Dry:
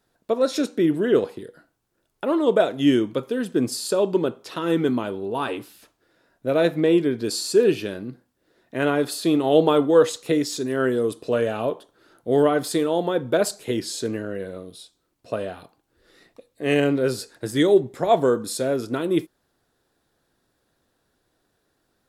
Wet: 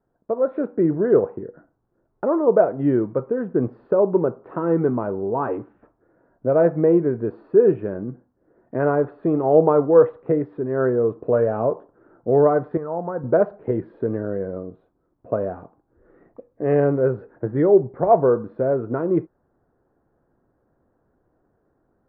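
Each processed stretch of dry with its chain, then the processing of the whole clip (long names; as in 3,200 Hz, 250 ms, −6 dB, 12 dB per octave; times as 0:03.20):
0:12.77–0:13.24: low-pass filter 1,700 Hz 24 dB per octave + parametric band 340 Hz −13.5 dB 1.8 octaves
whole clip: Bessel low-pass filter 900 Hz, order 6; dynamic equaliser 270 Hz, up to −8 dB, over −35 dBFS, Q 1.8; automatic gain control gain up to 6 dB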